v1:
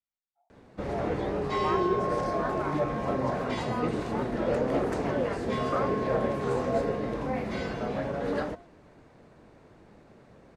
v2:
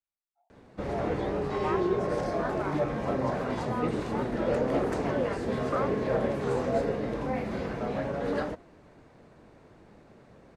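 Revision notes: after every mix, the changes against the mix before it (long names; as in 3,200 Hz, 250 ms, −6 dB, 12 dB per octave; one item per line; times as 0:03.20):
second sound −9.0 dB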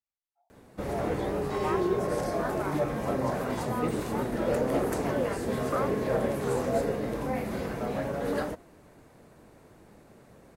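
master: remove low-pass filter 5,100 Hz 12 dB per octave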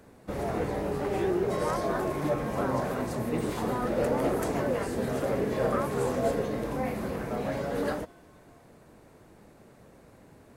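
first sound: entry −0.50 s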